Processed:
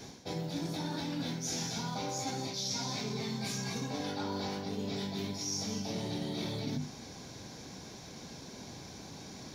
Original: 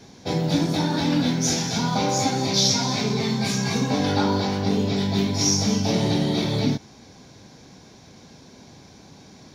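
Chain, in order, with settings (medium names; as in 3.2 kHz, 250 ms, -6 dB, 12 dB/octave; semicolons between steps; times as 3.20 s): treble shelf 7.8 kHz +7.5 dB; hum notches 50/100/150/200/250 Hz; reverse; compression 16:1, threshold -33 dBFS, peak gain reduction 19 dB; reverse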